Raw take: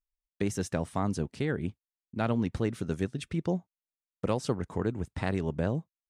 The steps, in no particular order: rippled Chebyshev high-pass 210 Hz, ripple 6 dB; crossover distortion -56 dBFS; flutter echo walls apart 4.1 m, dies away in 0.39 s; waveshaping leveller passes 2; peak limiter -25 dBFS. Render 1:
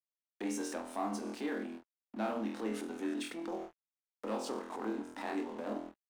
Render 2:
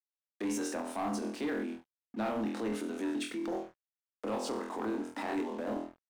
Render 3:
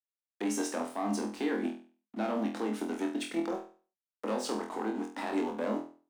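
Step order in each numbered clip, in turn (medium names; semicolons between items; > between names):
flutter echo > waveshaping leveller > peak limiter > rippled Chebyshev high-pass > crossover distortion; flutter echo > peak limiter > rippled Chebyshev high-pass > waveshaping leveller > crossover distortion; waveshaping leveller > rippled Chebyshev high-pass > crossover distortion > peak limiter > flutter echo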